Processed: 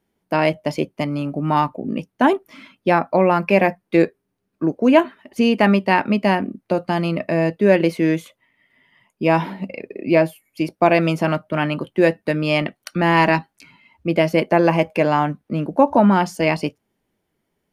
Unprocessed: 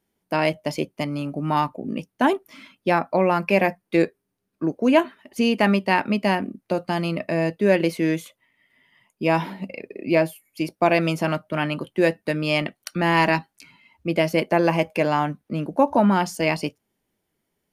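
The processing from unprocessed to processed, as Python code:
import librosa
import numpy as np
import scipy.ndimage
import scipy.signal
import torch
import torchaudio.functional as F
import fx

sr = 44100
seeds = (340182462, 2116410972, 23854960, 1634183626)

y = fx.high_shelf(x, sr, hz=3900.0, db=-7.5)
y = y * 10.0 ** (4.0 / 20.0)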